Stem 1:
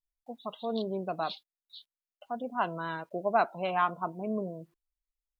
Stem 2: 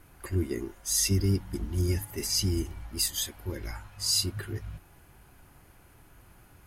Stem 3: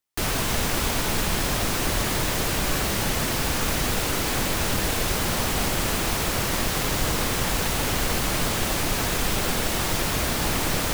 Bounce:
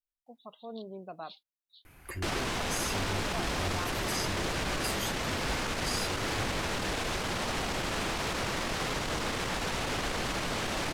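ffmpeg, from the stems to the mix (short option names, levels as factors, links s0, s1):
-filter_complex "[0:a]volume=0.335[s0];[1:a]acompressor=threshold=0.0178:ratio=6,equalizer=f=2300:t=o:w=0.77:g=7.5,adelay=1850,volume=0.891[s1];[2:a]acrusher=bits=2:mode=log:mix=0:aa=0.000001,adynamicsmooth=sensitivity=1.5:basefreq=5100,lowshelf=f=180:g=-6.5,adelay=2050,volume=0.841[s2];[s0][s2]amix=inputs=2:normalize=0,alimiter=limit=0.0631:level=0:latency=1:release=21,volume=1[s3];[s1][s3]amix=inputs=2:normalize=0"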